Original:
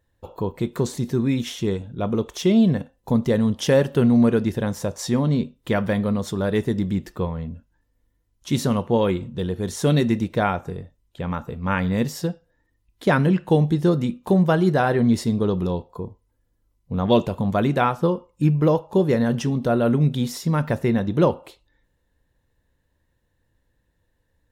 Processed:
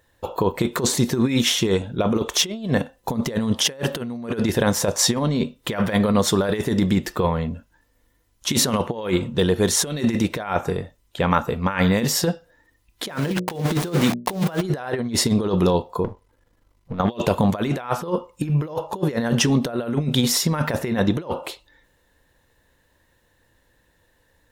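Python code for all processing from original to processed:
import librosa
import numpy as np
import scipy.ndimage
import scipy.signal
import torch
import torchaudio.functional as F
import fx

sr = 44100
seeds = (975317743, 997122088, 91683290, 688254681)

y = fx.chain(x, sr, fx.sample_gate(floor_db=-30.5),
    fx.hum_notches(base_hz=60, count=10), at=(13.08, 14.62))
y = fx.chain(y, sr, fx.halfwave_gain(db=-7.0),
    fx.high_shelf(hz=5700.0, db=-11.5),
    fx.over_compress(threshold_db=-33.0, ratio=-1.0), at=(16.04, 17.0))
y = fx.low_shelf(y, sr, hz=310.0, db=-11.0)
y = fx.over_compress(y, sr, threshold_db=-29.0, ratio=-0.5)
y = F.gain(torch.from_numpy(y), 9.0).numpy()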